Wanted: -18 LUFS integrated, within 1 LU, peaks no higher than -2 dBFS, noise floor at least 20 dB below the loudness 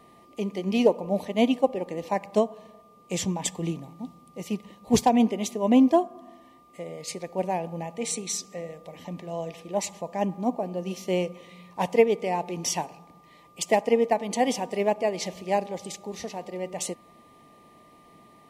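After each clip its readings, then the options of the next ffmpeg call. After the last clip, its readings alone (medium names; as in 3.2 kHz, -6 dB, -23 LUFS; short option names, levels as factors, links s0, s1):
steady tone 1.2 kHz; tone level -55 dBFS; loudness -27.0 LUFS; peak level -6.5 dBFS; loudness target -18.0 LUFS
-> -af "bandreject=f=1200:w=30"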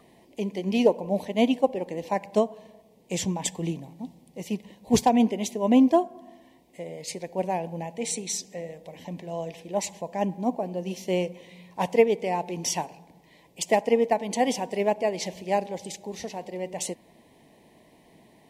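steady tone not found; loudness -27.0 LUFS; peak level -6.5 dBFS; loudness target -18.0 LUFS
-> -af "volume=2.82,alimiter=limit=0.794:level=0:latency=1"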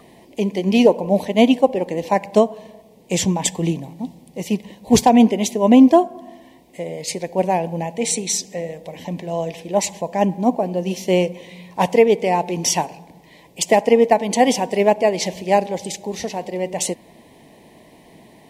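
loudness -18.5 LUFS; peak level -2.0 dBFS; noise floor -49 dBFS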